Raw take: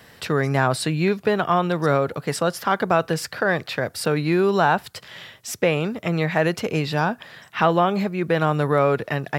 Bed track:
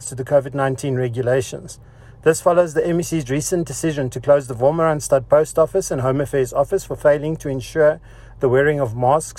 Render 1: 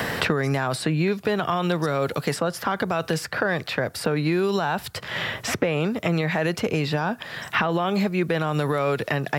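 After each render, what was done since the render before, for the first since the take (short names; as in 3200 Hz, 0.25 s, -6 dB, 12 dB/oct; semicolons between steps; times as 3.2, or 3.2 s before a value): limiter -13.5 dBFS, peak gain reduction 8.5 dB; three-band squash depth 100%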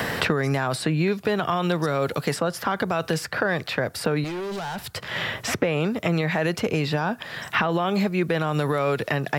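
4.24–4.88 hard clip -28.5 dBFS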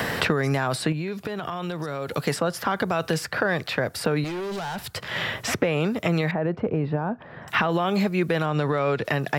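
0.92–2.12 compressor, threshold -26 dBFS; 6.31–7.48 Bessel low-pass 840 Hz; 8.46–9.05 air absorption 88 m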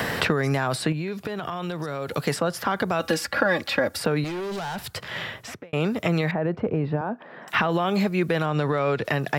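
3–3.98 comb 3.6 ms, depth 77%; 4.89–5.73 fade out; 7.01–7.54 HPF 210 Hz 24 dB/oct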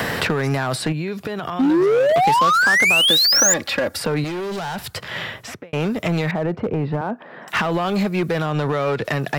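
1.59–3.54 painted sound rise 250–7300 Hz -15 dBFS; in parallel at -5 dB: wavefolder -21 dBFS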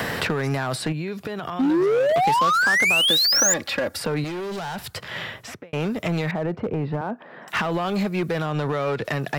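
gain -3.5 dB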